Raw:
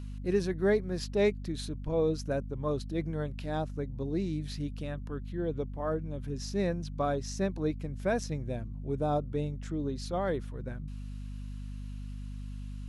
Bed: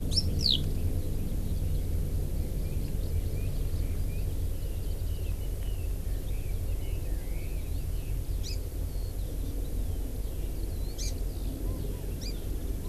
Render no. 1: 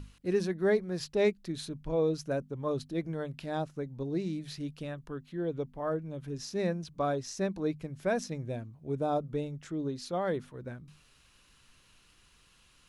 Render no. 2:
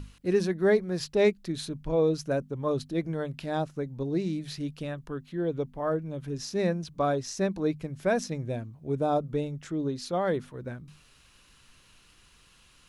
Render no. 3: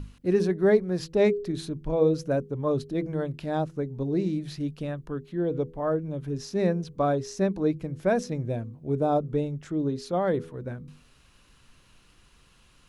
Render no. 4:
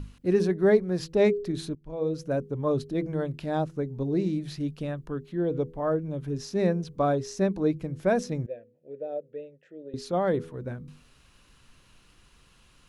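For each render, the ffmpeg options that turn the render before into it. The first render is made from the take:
ffmpeg -i in.wav -af "bandreject=frequency=50:width_type=h:width=6,bandreject=frequency=100:width_type=h:width=6,bandreject=frequency=150:width_type=h:width=6,bandreject=frequency=200:width_type=h:width=6,bandreject=frequency=250:width_type=h:width=6" out.wav
ffmpeg -i in.wav -af "volume=4dB" out.wav
ffmpeg -i in.wav -af "tiltshelf=frequency=1200:gain=3.5,bandreject=frequency=82:width_type=h:width=4,bandreject=frequency=164:width_type=h:width=4,bandreject=frequency=246:width_type=h:width=4,bandreject=frequency=328:width_type=h:width=4,bandreject=frequency=410:width_type=h:width=4,bandreject=frequency=492:width_type=h:width=4" out.wav
ffmpeg -i in.wav -filter_complex "[0:a]asettb=1/sr,asplit=3[link_01][link_02][link_03];[link_01]atrim=end=8.464[link_04];[link_02]atrim=start=8.46:end=9.94,asetpts=PTS-STARTPTS,afade=type=in:duration=0.004:curve=qsin,afade=type=out:start_time=1.476:duration=0.004:curve=qsin,asplit=3[link_05][link_06][link_07];[link_05]bandpass=frequency=530:width_type=q:width=8,volume=0dB[link_08];[link_06]bandpass=frequency=1840:width_type=q:width=8,volume=-6dB[link_09];[link_07]bandpass=frequency=2480:width_type=q:width=8,volume=-9dB[link_10];[link_08][link_09][link_10]amix=inputs=3:normalize=0[link_11];[link_03]atrim=start=9.936[link_12];[link_04][link_11]acrossfade=duration=0.004:curve1=hsin:curve2=qsin[link_13];[link_13][link_12]acrossfade=duration=0.004:curve1=qsin:curve2=hsin,asplit=2[link_14][link_15];[link_14]atrim=end=1.75,asetpts=PTS-STARTPTS,afade=type=out:start_time=1.746:duration=0.004:curve=hsin:silence=0.1[link_16];[link_15]atrim=start=1.75,asetpts=PTS-STARTPTS,afade=type=in:duration=0.76:silence=0.1[link_17];[link_16][link_17]concat=n=2:v=0:a=1" out.wav

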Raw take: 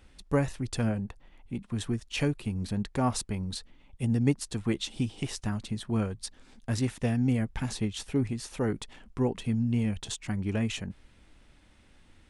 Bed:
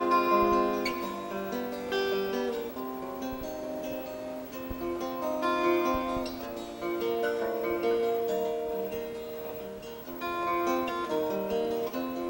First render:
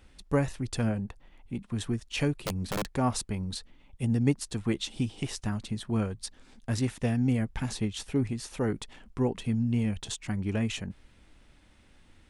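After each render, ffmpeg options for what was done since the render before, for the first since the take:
ffmpeg -i in.wav -filter_complex "[0:a]asettb=1/sr,asplit=3[link_01][link_02][link_03];[link_01]atrim=end=2.414[link_04];[link_02]atrim=start=2.41:end=2.89,asetpts=PTS-STARTPTS,afade=type=in:duration=0.004:curve=qsin,afade=type=out:start_time=0.476:duration=0.004:curve=qsin,aeval=exprs='(mod(17.8*val(0)+1,2)-1)/17.8':channel_layout=same[link_05];[link_03]atrim=start=2.886[link_06];[link_04][link_05]acrossfade=duration=0.004:curve1=hsin:curve2=qsin[link_07];[link_07][link_06]acrossfade=duration=0.004:curve1=qsin:curve2=hsin" out.wav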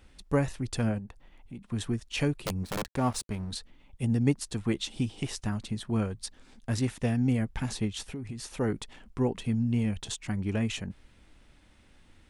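ffmpeg -i in.wav -filter_complex "[0:a]asettb=1/sr,asplit=3[link_01][link_02][link_03];[link_01]atrim=end=0.984[link_04];[link_02]atrim=start=0.98:end=1.66,asetpts=PTS-STARTPTS,afade=type=in:duration=0.004:curve=qsin,afade=type=out:start_time=0.676:duration=0.004:curve=qsin,acompressor=threshold=-43dB:ratio=2:attack=3.2:release=140:knee=1:detection=peak[link_05];[link_03]atrim=start=1.656[link_06];[link_04][link_05]acrossfade=duration=0.004:curve1=hsin:curve2=qsin[link_07];[link_07][link_06]acrossfade=duration=0.004:curve1=qsin:curve2=hsin,asettb=1/sr,asplit=3[link_08][link_09][link_10];[link_08]atrim=end=2.634[link_11];[link_09]atrim=start=2.63:end=3.51,asetpts=PTS-STARTPTS,afade=type=in:duration=0.004:curve=qsin,afade=type=out:start_time=0.876:duration=0.004:curve=qsin,aeval=exprs='sgn(val(0))*max(abs(val(0))-0.00596,0)':channel_layout=same[link_12];[link_10]atrim=start=3.506[link_13];[link_11][link_12]acrossfade=duration=0.004:curve1=hsin:curve2=qsin[link_14];[link_14][link_13]acrossfade=duration=0.004:curve1=qsin:curve2=hsin,asettb=1/sr,asplit=3[link_15][link_16][link_17];[link_15]atrim=end=8.094[link_18];[link_16]atrim=start=8.09:end=8.5,asetpts=PTS-STARTPTS,afade=type=in:duration=0.004:curve=qsin,afade=type=out:start_time=0.406:duration=0.004:curve=qsin,acompressor=threshold=-33dB:ratio=12:attack=3.2:release=140:knee=1:detection=peak[link_19];[link_17]atrim=start=8.496[link_20];[link_18][link_19]acrossfade=duration=0.004:curve1=hsin:curve2=qsin[link_21];[link_21][link_20]acrossfade=duration=0.004:curve1=qsin:curve2=hsin" out.wav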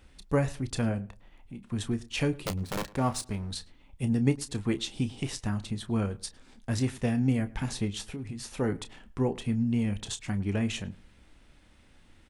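ffmpeg -i in.wav -filter_complex "[0:a]asplit=2[link_01][link_02];[link_02]adelay=30,volume=-12dB[link_03];[link_01][link_03]amix=inputs=2:normalize=0,asplit=2[link_04][link_05];[link_05]adelay=107,lowpass=frequency=2400:poles=1,volume=-21dB,asplit=2[link_06][link_07];[link_07]adelay=107,lowpass=frequency=2400:poles=1,volume=0.26[link_08];[link_04][link_06][link_08]amix=inputs=3:normalize=0" out.wav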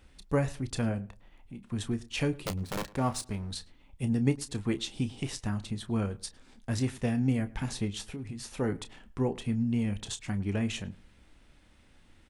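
ffmpeg -i in.wav -af "volume=-1.5dB" out.wav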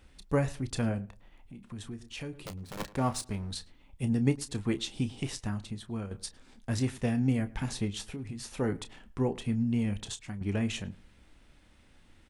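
ffmpeg -i in.wav -filter_complex "[0:a]asettb=1/sr,asplit=3[link_01][link_02][link_03];[link_01]atrim=end=1.054[link_04];[link_02]atrim=start=1.05:end=2.8,asetpts=PTS-STARTPTS,afade=type=in:duration=0.004:curve=qsin,afade=type=out:start_time=1.746:duration=0.004:curve=qsin,acompressor=threshold=-44dB:ratio=2:attack=3.2:release=140:knee=1:detection=peak[link_05];[link_03]atrim=start=2.796[link_06];[link_04][link_05]acrossfade=duration=0.004:curve1=hsin:curve2=qsin[link_07];[link_07][link_06]acrossfade=duration=0.004:curve1=qsin:curve2=hsin,asplit=3[link_08][link_09][link_10];[link_08]atrim=end=6.11,asetpts=PTS-STARTPTS,afade=type=out:start_time=5.26:duration=0.85:silence=0.375837[link_11];[link_09]atrim=start=6.11:end=10.41,asetpts=PTS-STARTPTS,afade=type=in:duration=0.004:curve=hsin:silence=0.375837,afade=type=out:start_time=3.89:duration=0.41:silence=0.334965[link_12];[link_10]atrim=start=10.41,asetpts=PTS-STARTPTS,afade=type=in:duration=0.004:curve=hsin:silence=0.334965[link_13];[link_11][link_12][link_13]concat=n=3:v=0:a=1" out.wav

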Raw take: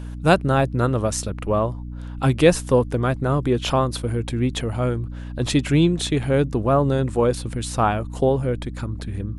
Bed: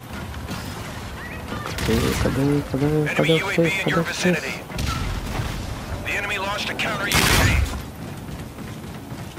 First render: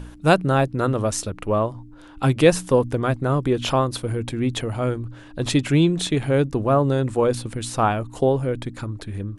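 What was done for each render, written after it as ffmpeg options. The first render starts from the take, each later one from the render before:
ffmpeg -i in.wav -af "bandreject=frequency=60:width_type=h:width=4,bandreject=frequency=120:width_type=h:width=4,bandreject=frequency=180:width_type=h:width=4,bandreject=frequency=240:width_type=h:width=4" out.wav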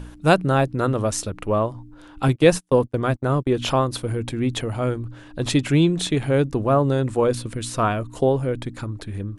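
ffmpeg -i in.wav -filter_complex "[0:a]asettb=1/sr,asplit=3[link_01][link_02][link_03];[link_01]atrim=end=2.284[link_04];[link_02]atrim=start=2.28:end=3.54,asetpts=PTS-STARTPTS,afade=type=in:duration=0.004:curve=qsin,afade=type=out:start_time=1.256:duration=0.004:curve=qsin,agate=range=-36dB:threshold=-26dB:ratio=16:release=100:detection=peak[link_05];[link_03]atrim=start=3.536[link_06];[link_04][link_05]acrossfade=duration=0.004:curve1=hsin:curve2=qsin[link_07];[link_07][link_06]acrossfade=duration=0.004:curve1=qsin:curve2=hsin,asettb=1/sr,asplit=3[link_08][link_09][link_10];[link_08]atrim=end=7.284[link_11];[link_09]atrim=start=7.28:end=8.17,asetpts=PTS-STARTPTS,afade=type=in:duration=0.004:curve=qsin,afade=type=out:start_time=0.886:duration=0.004:curve=qsin,asuperstop=centerf=810:order=4:qfactor=5.4[link_12];[link_10]atrim=start=8.166[link_13];[link_11][link_12]acrossfade=duration=0.004:curve1=hsin:curve2=qsin[link_14];[link_14][link_13]acrossfade=duration=0.004:curve1=qsin:curve2=hsin" out.wav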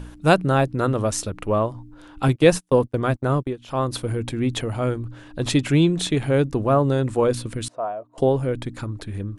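ffmpeg -i in.wav -filter_complex "[0:a]asettb=1/sr,asplit=3[link_01][link_02][link_03];[link_01]atrim=end=7.684[link_04];[link_02]atrim=start=7.68:end=8.18,asetpts=PTS-STARTPTS,afade=type=in:duration=0.004:curve=qsin,afade=type=out:start_time=0.496:duration=0.004:curve=qsin,bandpass=frequency=660:width_type=q:width=3.9[link_05];[link_03]atrim=start=8.176[link_06];[link_04][link_05]acrossfade=duration=0.004:curve1=hsin:curve2=qsin[link_07];[link_07][link_06]acrossfade=duration=0.004:curve1=qsin:curve2=hsin,asplit=3[link_08][link_09][link_10];[link_08]atrim=end=3.57,asetpts=PTS-STARTPTS,afade=type=out:start_time=3.32:duration=0.25:curve=qsin:silence=0.105925[link_11];[link_09]atrim=start=3.57:end=3.68,asetpts=PTS-STARTPTS,volume=-19.5dB[link_12];[link_10]atrim=start=3.68,asetpts=PTS-STARTPTS,afade=type=in:duration=0.25:curve=qsin:silence=0.105925[link_13];[link_11][link_12][link_13]concat=n=3:v=0:a=1" out.wav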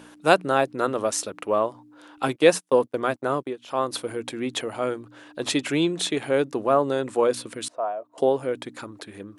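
ffmpeg -i in.wav -af "highpass=340" out.wav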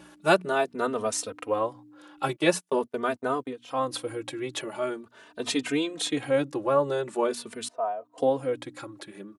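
ffmpeg -i in.wav -filter_complex "[0:a]asplit=2[link_01][link_02];[link_02]adelay=3.1,afreqshift=0.44[link_03];[link_01][link_03]amix=inputs=2:normalize=1" out.wav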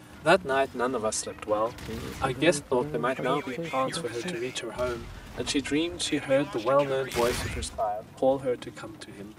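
ffmpeg -i in.wav -i bed.wav -filter_complex "[1:a]volume=-16dB[link_01];[0:a][link_01]amix=inputs=2:normalize=0" out.wav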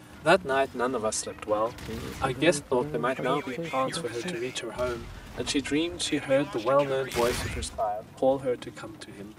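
ffmpeg -i in.wav -af anull out.wav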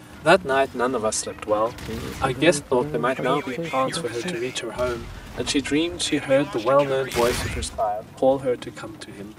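ffmpeg -i in.wav -af "volume=5dB" out.wav

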